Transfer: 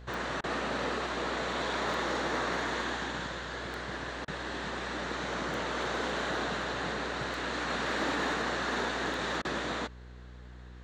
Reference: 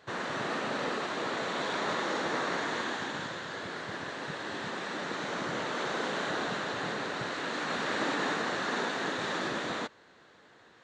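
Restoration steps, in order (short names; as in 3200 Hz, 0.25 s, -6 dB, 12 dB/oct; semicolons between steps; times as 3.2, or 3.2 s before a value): clip repair -24 dBFS; de-click; de-hum 61.3 Hz, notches 8; interpolate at 0.41/4.25/9.42, 27 ms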